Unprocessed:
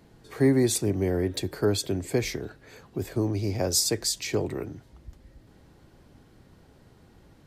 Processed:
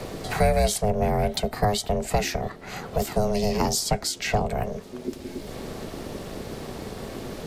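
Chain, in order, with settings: ring modulator 310 Hz; three bands compressed up and down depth 70%; trim +6.5 dB

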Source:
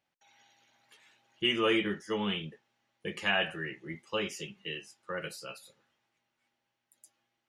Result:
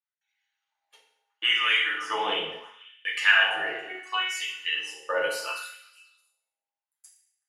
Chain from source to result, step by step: octave divider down 1 oct, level -5 dB; gate -57 dBFS, range -28 dB; in parallel at 0 dB: compression, threshold -37 dBFS, peak gain reduction 13.5 dB; 3.79–4.40 s: on the sum: robot voice 370 Hz; on a send: repeats whose band climbs or falls 123 ms, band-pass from 180 Hz, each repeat 1.4 oct, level -12 dB; on the sum: FDN reverb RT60 0.77 s, low-frequency decay 1.1×, high-frequency decay 0.9×, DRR -2 dB; LFO high-pass sine 0.72 Hz 590–1900 Hz

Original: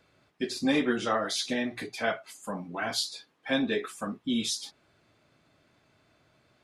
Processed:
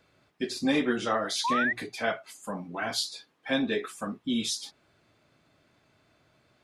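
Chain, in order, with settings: painted sound rise, 1.44–1.73 s, 890–2000 Hz -27 dBFS

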